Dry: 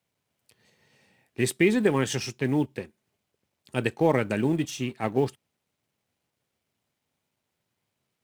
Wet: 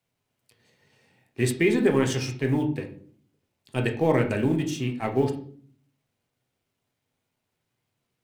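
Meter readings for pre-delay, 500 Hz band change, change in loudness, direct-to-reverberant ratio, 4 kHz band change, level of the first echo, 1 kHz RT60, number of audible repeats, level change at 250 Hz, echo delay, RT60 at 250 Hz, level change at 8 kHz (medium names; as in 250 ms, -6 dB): 3 ms, +1.5 dB, +1.0 dB, 3.0 dB, -0.5 dB, no echo, 0.45 s, no echo, +1.0 dB, no echo, 0.80 s, -1.5 dB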